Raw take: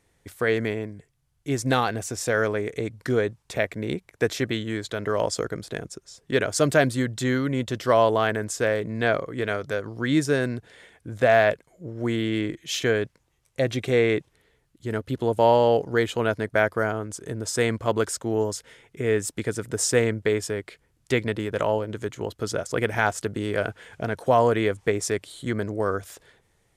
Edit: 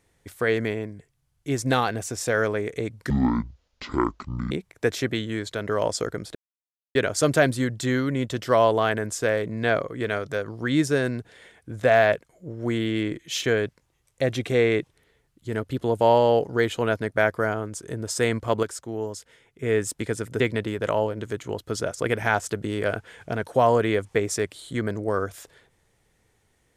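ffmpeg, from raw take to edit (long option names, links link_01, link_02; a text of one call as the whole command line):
ffmpeg -i in.wav -filter_complex "[0:a]asplit=8[link_01][link_02][link_03][link_04][link_05][link_06][link_07][link_08];[link_01]atrim=end=3.104[link_09];[link_02]atrim=start=3.1:end=3.89,asetpts=PTS-STARTPTS,asetrate=24696,aresample=44100,atrim=end_sample=62212,asetpts=PTS-STARTPTS[link_10];[link_03]atrim=start=3.886:end=5.73,asetpts=PTS-STARTPTS,afade=type=out:start_time=1.84:duration=0.004:curve=hsin[link_11];[link_04]atrim=start=5.73:end=6.33,asetpts=PTS-STARTPTS,volume=0[link_12];[link_05]atrim=start=6.33:end=18.012,asetpts=PTS-STARTPTS,afade=type=in:duration=0.004:curve=hsin[link_13];[link_06]atrim=start=18.008:end=19.012,asetpts=PTS-STARTPTS,volume=-6dB[link_14];[link_07]atrim=start=19.008:end=19.782[link_15];[link_08]atrim=start=21.118[link_16];[link_09][link_10]acrossfade=duration=0.004:curve1=hsin:curve2=hsin[link_17];[link_11][link_12][link_13]concat=n=3:v=0:a=1[link_18];[link_17][link_18]acrossfade=duration=0.004:curve1=hsin:curve2=hsin[link_19];[link_19][link_14]acrossfade=duration=0.004:curve1=hsin:curve2=hsin[link_20];[link_20][link_15]acrossfade=duration=0.004:curve1=hsin:curve2=hsin[link_21];[link_21][link_16]acrossfade=duration=0.004:curve1=hsin:curve2=hsin" out.wav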